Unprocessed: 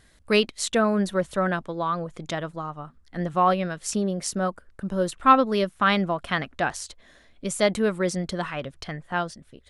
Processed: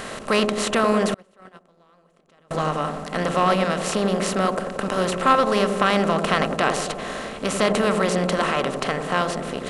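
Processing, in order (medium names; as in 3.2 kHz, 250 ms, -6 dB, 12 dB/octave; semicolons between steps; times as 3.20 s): spectral levelling over time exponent 0.4; feedback echo behind a low-pass 89 ms, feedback 68%, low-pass 630 Hz, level -3.5 dB; 1.14–2.51 s: gate -11 dBFS, range -35 dB; trim -3.5 dB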